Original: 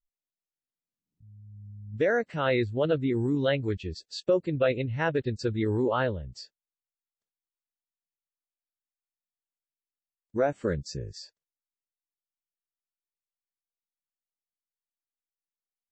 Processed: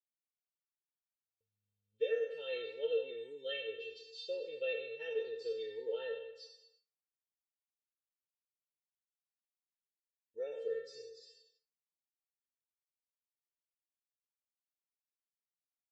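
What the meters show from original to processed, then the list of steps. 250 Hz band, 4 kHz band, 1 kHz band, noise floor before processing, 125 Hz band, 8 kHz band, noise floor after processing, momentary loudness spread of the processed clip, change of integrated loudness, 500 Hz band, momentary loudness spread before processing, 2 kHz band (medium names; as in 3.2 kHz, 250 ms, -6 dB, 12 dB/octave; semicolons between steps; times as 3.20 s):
-32.0 dB, -6.5 dB, -27.5 dB, under -85 dBFS, under -40 dB, no reading, under -85 dBFS, 15 LU, -11.5 dB, -10.0 dB, 16 LU, -13.0 dB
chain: spectral sustain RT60 0.88 s; gate with hold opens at -45 dBFS; vowel filter e; resonant high shelf 2.5 kHz +9 dB, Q 3; feedback comb 450 Hz, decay 0.21 s, harmonics all, mix 100%; trim +9.5 dB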